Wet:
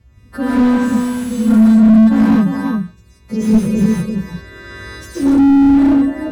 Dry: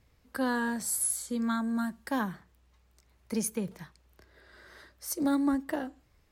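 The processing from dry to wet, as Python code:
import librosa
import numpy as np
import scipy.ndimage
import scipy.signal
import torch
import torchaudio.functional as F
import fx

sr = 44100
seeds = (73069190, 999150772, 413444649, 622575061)

p1 = fx.freq_snap(x, sr, grid_st=2)
p2 = scipy.signal.sosfilt(scipy.signal.butter(2, 83.0, 'highpass', fs=sr, output='sos'), p1)
p3 = fx.low_shelf(p2, sr, hz=190.0, db=6.0)
p4 = fx.over_compress(p3, sr, threshold_db=-33.0, ratio=-0.5, at=(3.5, 5.17), fade=0.02)
p5 = fx.riaa(p4, sr, side='playback')
p6 = p5 + fx.echo_single(p5, sr, ms=350, db=-6.0, dry=0)
p7 = fx.rev_gated(p6, sr, seeds[0], gate_ms=200, shape='rising', drr_db=-6.0)
p8 = fx.slew_limit(p7, sr, full_power_hz=70.0)
y = p8 * librosa.db_to_amplitude(4.5)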